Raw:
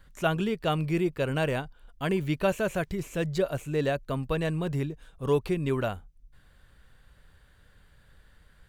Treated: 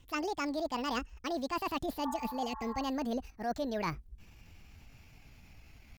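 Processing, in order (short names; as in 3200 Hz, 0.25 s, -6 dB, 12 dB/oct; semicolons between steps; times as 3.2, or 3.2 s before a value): speed glide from 164% -> 126%; in parallel at -2 dB: level quantiser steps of 17 dB; on the sum: pitch shift +2.5 st; reverse; compressor 6:1, threshold -32 dBFS, peak gain reduction 13 dB; reverse; spectral repair 2.07–2.8, 840–1900 Hz both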